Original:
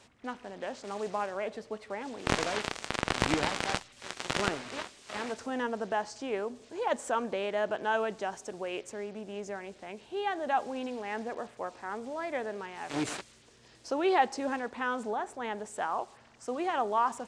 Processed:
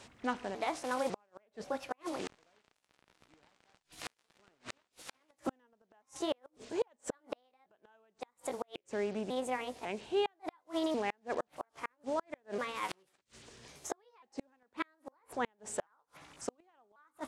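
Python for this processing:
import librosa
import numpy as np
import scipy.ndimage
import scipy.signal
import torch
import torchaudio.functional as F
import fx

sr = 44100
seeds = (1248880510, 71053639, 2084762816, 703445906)

y = fx.pitch_trill(x, sr, semitones=4.0, every_ms=547)
y = fx.gate_flip(y, sr, shuts_db=-26.0, range_db=-41)
y = y * librosa.db_to_amplitude(4.0)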